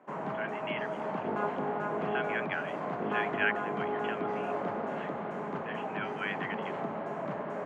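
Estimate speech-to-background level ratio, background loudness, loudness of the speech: -3.0 dB, -35.0 LUFS, -38.0 LUFS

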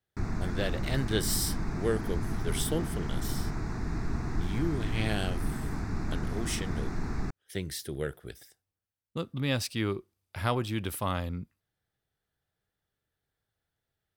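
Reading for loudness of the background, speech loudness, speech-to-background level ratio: -35.5 LUFS, -34.0 LUFS, 1.5 dB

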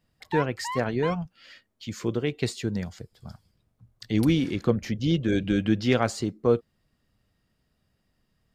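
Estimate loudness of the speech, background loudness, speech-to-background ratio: -26.5 LUFS, -36.0 LUFS, 9.5 dB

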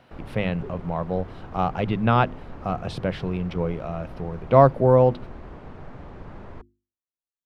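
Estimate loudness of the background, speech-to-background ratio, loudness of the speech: -42.5 LUFS, 19.5 dB, -23.0 LUFS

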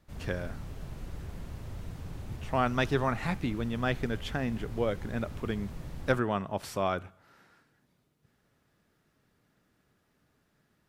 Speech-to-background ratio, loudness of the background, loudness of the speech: 11.0 dB, -43.5 LUFS, -32.5 LUFS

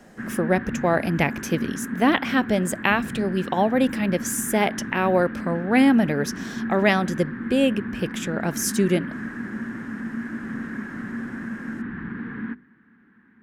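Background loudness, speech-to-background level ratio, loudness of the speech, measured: -32.0 LUFS, 9.0 dB, -23.0 LUFS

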